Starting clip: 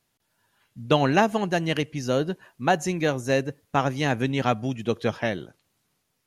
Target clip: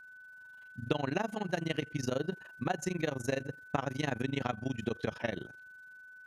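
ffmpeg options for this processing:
-af "acompressor=threshold=-26dB:ratio=6,tremolo=f=24:d=0.947,aeval=exprs='val(0)+0.00316*sin(2*PI*1500*n/s)':c=same"

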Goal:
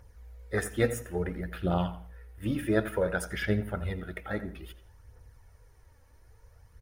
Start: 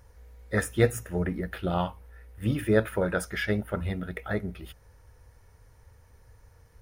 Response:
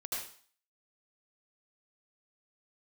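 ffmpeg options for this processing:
-filter_complex "[0:a]aphaser=in_gain=1:out_gain=1:delay=3.8:decay=0.45:speed=0.58:type=triangular,asplit=2[a][b];[b]adelay=85,lowpass=f=2.3k:p=1,volume=-12dB,asplit=2[c][d];[d]adelay=85,lowpass=f=2.3k:p=1,volume=0.34,asplit=2[e][f];[f]adelay=85,lowpass=f=2.3k:p=1,volume=0.34[g];[a][c][e][g]amix=inputs=4:normalize=0,asplit=2[h][i];[1:a]atrim=start_sample=2205[j];[i][j]afir=irnorm=-1:irlink=0,volume=-22dB[k];[h][k]amix=inputs=2:normalize=0,volume=-4dB"

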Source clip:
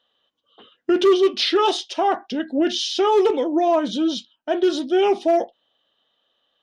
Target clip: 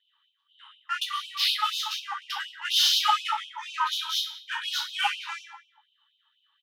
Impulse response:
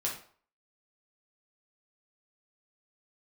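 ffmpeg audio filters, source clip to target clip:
-filter_complex "[0:a]acrossover=split=120|660[a][b][c];[c]adynamicsmooth=sensitivity=5:basefreq=3k[d];[a][b][d]amix=inputs=3:normalize=0,asplit=2[e][f];[f]adelay=176,lowpass=f=1.9k:p=1,volume=-11dB,asplit=2[g][h];[h]adelay=176,lowpass=f=1.9k:p=1,volume=0.18[i];[e][g][i]amix=inputs=3:normalize=0[j];[1:a]atrim=start_sample=2205,asetrate=33957,aresample=44100[k];[j][k]afir=irnorm=-1:irlink=0,asettb=1/sr,asplit=3[l][m][n];[l]atrim=end=0.984[o];[m]atrim=start=0.98:end=2.22,asetpts=PTS-STARTPTS,afade=t=in:d=0.004:c=qsin,afade=t=out:st=1.236:d=0.004:c=qsin,acompressor=threshold=-21dB:ratio=3[p];[n]atrim=start=2.216[q];[o][p]acrossfade=d=0.004:c1=hsin:c2=qsin[r];[r][q]acrossfade=d=0.004:c1=qsin:c2=hsin,afftfilt=real='re*gte(b*sr/1024,810*pow(2500/810,0.5+0.5*sin(2*PI*4.1*pts/sr)))':imag='im*gte(b*sr/1024,810*pow(2500/810,0.5+0.5*sin(2*PI*4.1*pts/sr)))':win_size=1024:overlap=0.75"

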